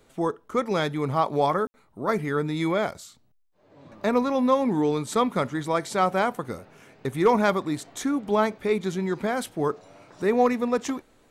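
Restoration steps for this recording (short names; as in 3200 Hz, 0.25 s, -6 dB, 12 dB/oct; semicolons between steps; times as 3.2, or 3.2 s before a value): clip repair -10.5 dBFS; room tone fill 1.67–1.74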